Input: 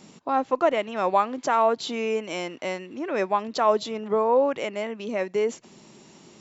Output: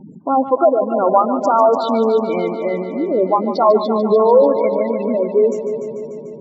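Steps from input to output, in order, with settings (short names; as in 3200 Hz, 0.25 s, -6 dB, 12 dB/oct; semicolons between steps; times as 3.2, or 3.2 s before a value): spectral gate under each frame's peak -10 dB strong; tilt -2.5 dB/oct; multi-head echo 0.147 s, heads first and second, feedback 64%, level -12 dB; gain +7.5 dB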